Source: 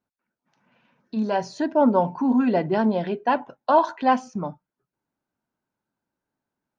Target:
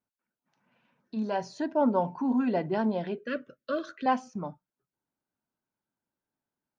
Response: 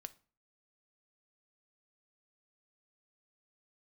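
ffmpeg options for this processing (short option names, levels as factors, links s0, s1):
-filter_complex "[0:a]asettb=1/sr,asplit=3[s0][s1][s2];[s0]atrim=end=3.184[s3];[s1]atrim=start=3.18:end=4.06,asetpts=PTS-STARTPTS,afade=t=in:d=0.004:c=qsin,afade=t=out:st=0.876:d=0.004:c=qsin,asuperstop=centerf=840:order=12:qfactor=1.5[s4];[s2]atrim=start=4.056[s5];[s3][s4]acrossfade=d=0.004:c1=hsin:c2=qsin[s6];[s6][s5]acrossfade=d=0.004:c1=qsin:c2=hsin,volume=0.473"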